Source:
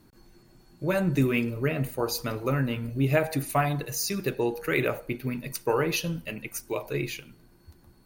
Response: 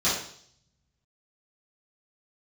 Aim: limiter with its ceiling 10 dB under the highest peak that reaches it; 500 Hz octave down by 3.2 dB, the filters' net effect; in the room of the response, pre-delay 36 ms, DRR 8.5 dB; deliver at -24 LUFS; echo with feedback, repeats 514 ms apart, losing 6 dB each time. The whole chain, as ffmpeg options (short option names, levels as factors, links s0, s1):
-filter_complex "[0:a]equalizer=f=500:t=o:g=-4,alimiter=limit=0.0944:level=0:latency=1,aecho=1:1:514|1028|1542|2056|2570|3084:0.501|0.251|0.125|0.0626|0.0313|0.0157,asplit=2[s0][s1];[1:a]atrim=start_sample=2205,adelay=36[s2];[s1][s2]afir=irnorm=-1:irlink=0,volume=0.0794[s3];[s0][s3]amix=inputs=2:normalize=0,volume=2"